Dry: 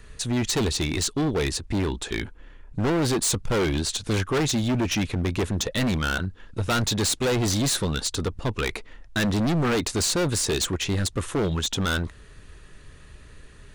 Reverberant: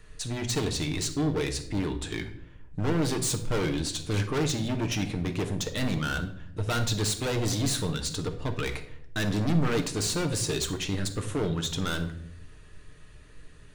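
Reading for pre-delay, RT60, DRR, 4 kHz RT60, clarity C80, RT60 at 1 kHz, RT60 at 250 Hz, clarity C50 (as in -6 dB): 6 ms, 0.75 s, 5.0 dB, 0.50 s, 14.5 dB, 0.60 s, 1.1 s, 10.5 dB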